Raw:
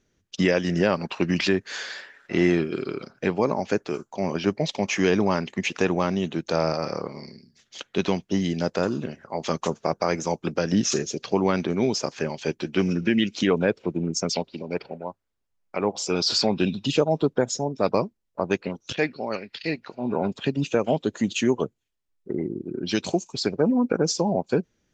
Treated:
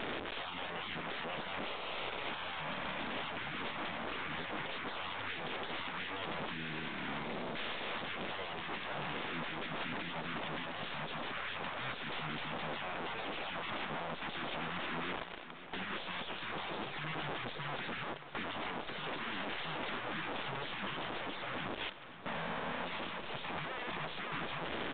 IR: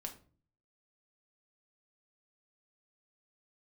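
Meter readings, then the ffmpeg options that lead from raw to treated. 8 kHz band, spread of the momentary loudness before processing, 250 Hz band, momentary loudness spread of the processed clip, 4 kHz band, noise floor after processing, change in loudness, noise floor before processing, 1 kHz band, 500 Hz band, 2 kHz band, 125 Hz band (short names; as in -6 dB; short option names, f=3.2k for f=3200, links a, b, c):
under -40 dB, 10 LU, -21.0 dB, 2 LU, -9.5 dB, -45 dBFS, -14.5 dB, -73 dBFS, -8.0 dB, -19.5 dB, -6.0 dB, -18.5 dB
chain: -af "aeval=exprs='val(0)+0.5*0.0562*sgn(val(0))':c=same,highpass=490,afftfilt=real='re*lt(hypot(re,im),0.0562)':imag='im*lt(hypot(re,im),0.0562)':win_size=1024:overlap=0.75,tiltshelf=f=800:g=4,acompressor=mode=upward:threshold=-50dB:ratio=2.5,alimiter=level_in=7dB:limit=-24dB:level=0:latency=1:release=218,volume=-7dB,aeval=exprs='clip(val(0),-1,0.00501)':c=same,aecho=1:1:537|1074|1611|2148|2685|3222:0.211|0.127|0.0761|0.0457|0.0274|0.0164,aresample=8000,aresample=44100,volume=5dB"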